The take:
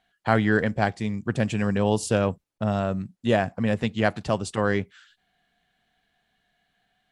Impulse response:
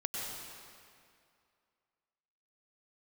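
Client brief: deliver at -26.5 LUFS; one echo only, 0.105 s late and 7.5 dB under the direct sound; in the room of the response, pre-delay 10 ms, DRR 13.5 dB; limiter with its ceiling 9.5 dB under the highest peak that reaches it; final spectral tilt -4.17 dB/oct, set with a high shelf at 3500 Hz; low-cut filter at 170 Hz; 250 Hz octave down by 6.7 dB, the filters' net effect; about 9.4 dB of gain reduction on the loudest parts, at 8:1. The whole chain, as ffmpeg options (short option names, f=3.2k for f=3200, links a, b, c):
-filter_complex "[0:a]highpass=170,equalizer=f=250:t=o:g=-7,highshelf=f=3.5k:g=3.5,acompressor=threshold=-27dB:ratio=8,alimiter=limit=-21dB:level=0:latency=1,aecho=1:1:105:0.422,asplit=2[a][b];[1:a]atrim=start_sample=2205,adelay=10[c];[b][c]afir=irnorm=-1:irlink=0,volume=-17dB[d];[a][d]amix=inputs=2:normalize=0,volume=7.5dB"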